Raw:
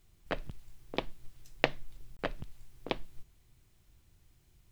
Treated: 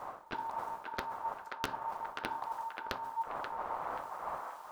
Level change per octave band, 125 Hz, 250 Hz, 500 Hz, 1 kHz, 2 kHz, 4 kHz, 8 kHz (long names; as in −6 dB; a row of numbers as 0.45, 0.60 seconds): −8.5 dB, −6.5 dB, −5.0 dB, +10.0 dB, −3.0 dB, −5.0 dB, can't be measured